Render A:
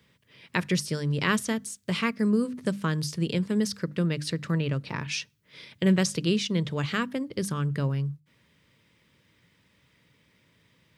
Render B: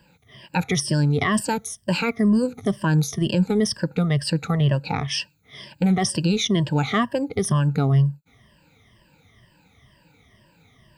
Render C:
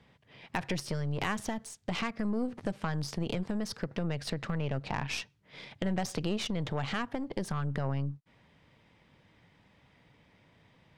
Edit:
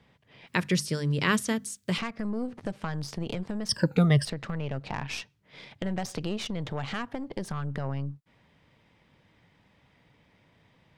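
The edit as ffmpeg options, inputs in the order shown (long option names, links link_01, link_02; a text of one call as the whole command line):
ffmpeg -i take0.wav -i take1.wav -i take2.wav -filter_complex "[2:a]asplit=3[link_01][link_02][link_03];[link_01]atrim=end=0.472[link_04];[0:a]atrim=start=0.468:end=1.982[link_05];[link_02]atrim=start=1.978:end=3.692[link_06];[1:a]atrim=start=3.688:end=4.252[link_07];[link_03]atrim=start=4.248[link_08];[link_04][link_05]acrossfade=duration=0.004:curve1=hsin:curve2=hsin[link_09];[link_09][link_06]acrossfade=duration=0.004:curve1=hsin:curve2=hsin[link_10];[link_10][link_07]acrossfade=duration=0.004:curve1=hsin:curve2=hsin[link_11];[link_11][link_08]acrossfade=duration=0.004:curve1=hsin:curve2=hsin" out.wav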